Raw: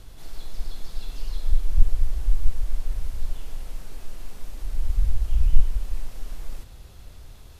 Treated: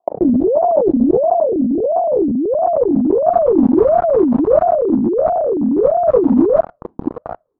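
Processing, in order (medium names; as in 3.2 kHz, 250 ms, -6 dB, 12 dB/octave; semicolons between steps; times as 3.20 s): gate with hold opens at -33 dBFS; waveshaping leveller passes 5; low-pass sweep 310 Hz -> 660 Hz, 1.70–3.88 s; compressor with a negative ratio -12 dBFS, ratio -1; ring modulator with a swept carrier 470 Hz, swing 50%, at 1.5 Hz; trim +1.5 dB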